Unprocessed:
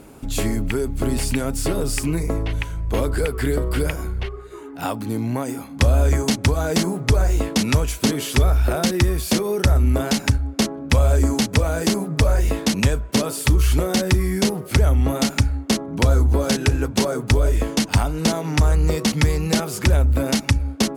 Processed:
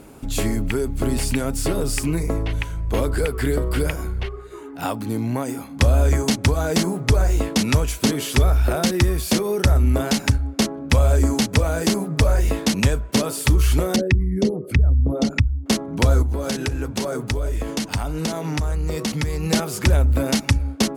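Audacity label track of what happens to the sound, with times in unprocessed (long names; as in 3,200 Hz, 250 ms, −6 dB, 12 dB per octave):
13.960000	15.660000	spectral envelope exaggerated exponent 2
16.220000	19.440000	downward compressor 3 to 1, threshold −21 dBFS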